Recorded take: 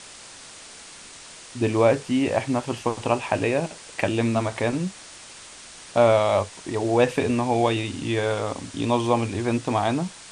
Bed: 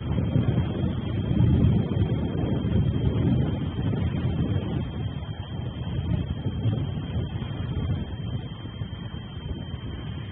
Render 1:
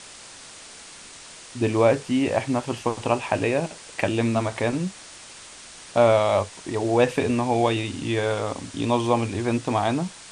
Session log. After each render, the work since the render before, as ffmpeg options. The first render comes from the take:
ffmpeg -i in.wav -af anull out.wav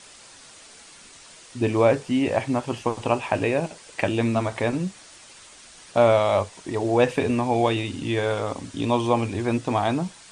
ffmpeg -i in.wav -af "afftdn=noise_reduction=6:noise_floor=-44" out.wav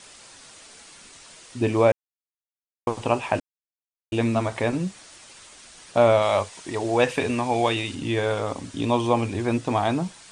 ffmpeg -i in.wav -filter_complex "[0:a]asettb=1/sr,asplit=3[link_01][link_02][link_03];[link_01]atrim=end=6.224[link_04];[link_02]atrim=start=6.22:end=7.95,asetpts=PTS-STARTPTS,afade=type=in:duration=0.004:curve=qsin,afade=type=out:start_time=1.726:duration=0.004:curve=qsin,tiltshelf=frequency=810:gain=-3.5[link_05];[link_03]atrim=start=7.946[link_06];[link_04][link_05]acrossfade=duration=0.004:curve1=hsin:curve2=qsin[link_07];[link_07][link_06]acrossfade=duration=0.004:curve1=qsin:curve2=hsin,asplit=5[link_08][link_09][link_10][link_11][link_12];[link_08]atrim=end=1.92,asetpts=PTS-STARTPTS,afade=type=out:start_time=1.916:duration=0.004:curve=hsin[link_13];[link_09]atrim=start=1.92:end=2.87,asetpts=PTS-STARTPTS,volume=0[link_14];[link_10]atrim=start=2.87:end=3.4,asetpts=PTS-STARTPTS,afade=type=in:duration=0.004:curve=hsin,afade=type=out:start_time=0.526:duration=0.004:curve=hsin[link_15];[link_11]atrim=start=3.4:end=4.12,asetpts=PTS-STARTPTS,volume=0[link_16];[link_12]atrim=start=4.12,asetpts=PTS-STARTPTS,afade=type=in:duration=0.004:curve=hsin[link_17];[link_13][link_14][link_15][link_16][link_17]concat=n=5:v=0:a=1" out.wav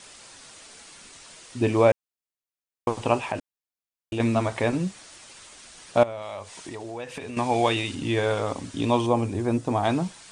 ffmpeg -i in.wav -filter_complex "[0:a]asettb=1/sr,asplit=3[link_01][link_02][link_03];[link_01]atrim=end=3.234[link_04];[link_02]atrim=start=3.23:end=4.2,asetpts=PTS-STARTPTS,afade=type=in:duration=0.004:curve=qsin,afade=type=out:start_time=0.966:duration=0.004:curve=qsin,acompressor=threshold=-28dB:ratio=2:attack=3.2:release=140:knee=1:detection=peak[link_05];[link_03]atrim=start=4.196[link_06];[link_04][link_05]acrossfade=duration=0.004:curve1=hsin:curve2=qsin[link_07];[link_07][link_06]acrossfade=duration=0.004:curve1=qsin:curve2=hsin,asettb=1/sr,asplit=3[link_08][link_09][link_10];[link_08]atrim=end=6.034[link_11];[link_09]atrim=start=6.03:end=7.37,asetpts=PTS-STARTPTS,afade=type=in:duration=0.004:curve=qsin,afade=type=out:start_time=1.336:duration=0.004:curve=qsin,acompressor=threshold=-34dB:ratio=4:attack=3.2:release=140:knee=1:detection=peak[link_12];[link_10]atrim=start=7.366[link_13];[link_11][link_12]acrossfade=duration=0.004:curve1=hsin:curve2=qsin[link_14];[link_14][link_13]acrossfade=duration=0.004:curve1=qsin:curve2=hsin,asettb=1/sr,asplit=3[link_15][link_16][link_17];[link_15]atrim=end=9.064[link_18];[link_16]atrim=start=9.06:end=9.84,asetpts=PTS-STARTPTS,afade=type=in:duration=0.004:curve=qsin,afade=type=out:start_time=0.776:duration=0.004:curve=qsin,equalizer=frequency=2800:width=0.55:gain=-8.5[link_19];[link_17]atrim=start=9.836[link_20];[link_18][link_19]acrossfade=duration=0.004:curve1=hsin:curve2=qsin[link_21];[link_21][link_20]acrossfade=duration=0.004:curve1=qsin:curve2=hsin" out.wav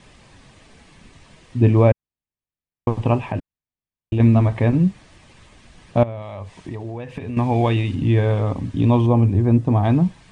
ffmpeg -i in.wav -af "bass=frequency=250:gain=15,treble=frequency=4000:gain=-14,bandreject=frequency=1400:width=7.9" out.wav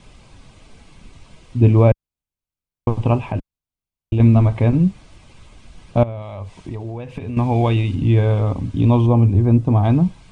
ffmpeg -i in.wav -af "lowshelf=frequency=65:gain=10.5,bandreject=frequency=1800:width=5.8" out.wav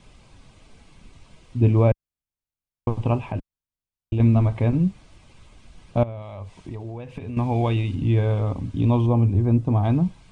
ffmpeg -i in.wav -af "volume=-5dB" out.wav

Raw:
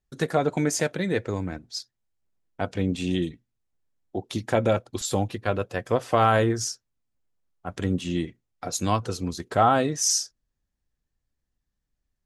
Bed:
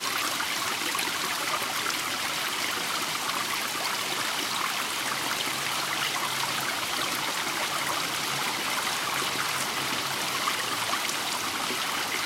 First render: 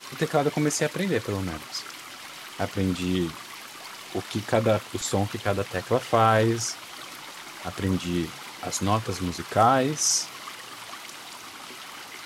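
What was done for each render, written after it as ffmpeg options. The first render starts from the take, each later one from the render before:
ffmpeg -i in.wav -i bed.wav -filter_complex "[1:a]volume=-11.5dB[link_01];[0:a][link_01]amix=inputs=2:normalize=0" out.wav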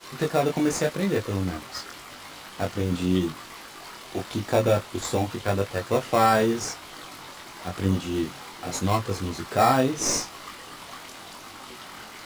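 ffmpeg -i in.wav -filter_complex "[0:a]asplit=2[link_01][link_02];[link_02]acrusher=samples=14:mix=1:aa=0.000001,volume=-5dB[link_03];[link_01][link_03]amix=inputs=2:normalize=0,flanger=delay=20:depth=3.2:speed=0.87" out.wav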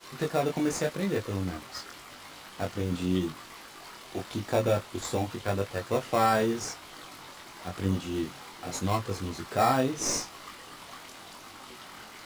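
ffmpeg -i in.wav -af "volume=-4.5dB" out.wav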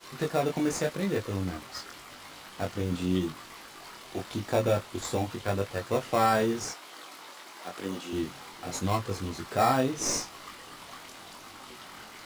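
ffmpeg -i in.wav -filter_complex "[0:a]asettb=1/sr,asplit=3[link_01][link_02][link_03];[link_01]atrim=end=6.734[link_04];[link_02]atrim=start=6.73:end=8.13,asetpts=PTS-STARTPTS,afade=type=in:duration=0.004:curve=qsin,afade=type=out:start_time=1.396:duration=0.004:curve=qsin,highpass=310[link_05];[link_03]atrim=start=8.126[link_06];[link_04][link_05]acrossfade=duration=0.004:curve1=hsin:curve2=qsin[link_07];[link_07][link_06]acrossfade=duration=0.004:curve1=qsin:curve2=hsin" out.wav

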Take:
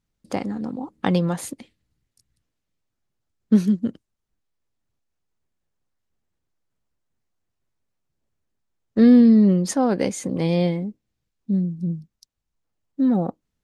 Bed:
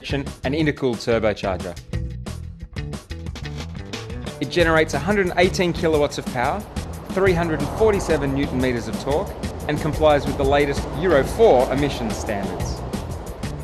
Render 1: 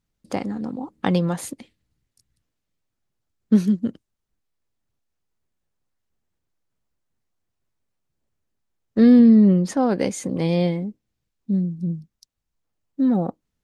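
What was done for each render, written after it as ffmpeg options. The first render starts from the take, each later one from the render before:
ffmpeg -i in.wav -filter_complex "[0:a]asettb=1/sr,asplit=3[link_01][link_02][link_03];[link_01]atrim=end=9.194[link_04];[link_02]atrim=start=9.19:end=9.77,asetpts=PTS-STARTPTS,afade=type=in:duration=0.004:curve=qsin,afade=type=out:start_time=0.576:duration=0.004:curve=qsin,bass=frequency=250:gain=2,treble=frequency=4000:gain=-8[link_05];[link_03]atrim=start=9.766[link_06];[link_04][link_05]acrossfade=duration=0.004:curve1=hsin:curve2=qsin[link_07];[link_07][link_06]acrossfade=duration=0.004:curve1=qsin:curve2=hsin" out.wav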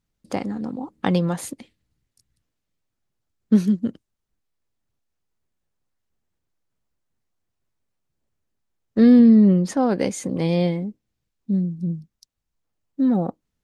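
ffmpeg -i in.wav -af anull out.wav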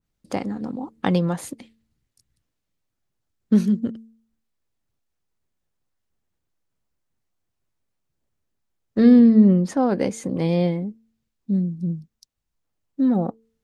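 ffmpeg -i in.wav -af "bandreject=frequency=224.6:width_type=h:width=4,bandreject=frequency=449.2:width_type=h:width=4,adynamicequalizer=threshold=0.0112:dfrequency=2000:dqfactor=0.7:tfrequency=2000:tqfactor=0.7:attack=5:release=100:ratio=0.375:range=3:mode=cutabove:tftype=highshelf" out.wav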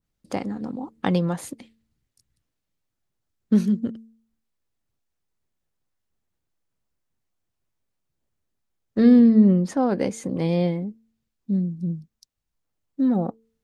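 ffmpeg -i in.wav -af "volume=-1.5dB" out.wav

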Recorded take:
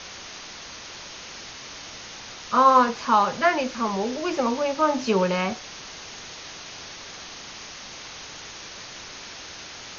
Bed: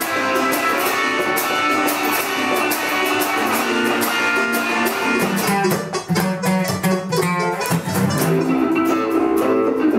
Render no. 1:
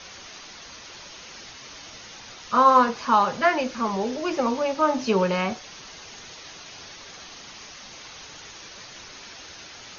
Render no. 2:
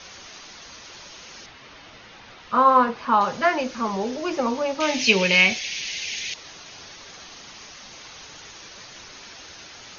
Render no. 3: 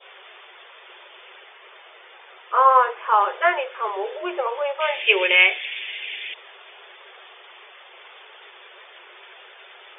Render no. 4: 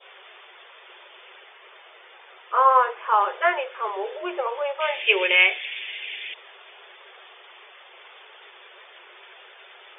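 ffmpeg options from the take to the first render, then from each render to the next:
ffmpeg -i in.wav -af "afftdn=noise_reduction=6:noise_floor=-41" out.wav
ffmpeg -i in.wav -filter_complex "[0:a]asettb=1/sr,asplit=3[link_01][link_02][link_03];[link_01]atrim=end=1.464[link_04];[link_02]atrim=start=1.46:end=3.21,asetpts=PTS-STARTPTS,afade=type=in:duration=0.004:curve=qsin,afade=type=out:start_time=1.746:duration=0.004:curve=qsin,lowpass=3200[link_05];[link_03]atrim=start=3.206[link_06];[link_04][link_05]acrossfade=duration=0.004:curve1=hsin:curve2=qsin[link_07];[link_07][link_06]acrossfade=duration=0.004:curve1=qsin:curve2=hsin,asettb=1/sr,asplit=3[link_08][link_09][link_10];[link_08]atrim=end=4.804[link_11];[link_09]atrim=start=4.8:end=6.34,asetpts=PTS-STARTPTS,afade=type=in:duration=0.004:curve=qsin,afade=type=out:start_time=1.536:duration=0.004:curve=qsin,highshelf=frequency=1700:width_type=q:width=3:gain=10.5[link_12];[link_10]atrim=start=6.336[link_13];[link_11][link_12]acrossfade=duration=0.004:curve1=hsin:curve2=qsin[link_14];[link_14][link_13]acrossfade=duration=0.004:curve1=qsin:curve2=hsin" out.wav
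ffmpeg -i in.wav -af "adynamicequalizer=threshold=0.0398:dfrequency=1700:dqfactor=0.92:tfrequency=1700:tqfactor=0.92:attack=5:release=100:ratio=0.375:range=1.5:mode=boostabove:tftype=bell,afftfilt=real='re*between(b*sr/4096,350,3600)':imag='im*between(b*sr/4096,350,3600)':win_size=4096:overlap=0.75" out.wav
ffmpeg -i in.wav -af "volume=-2dB" out.wav

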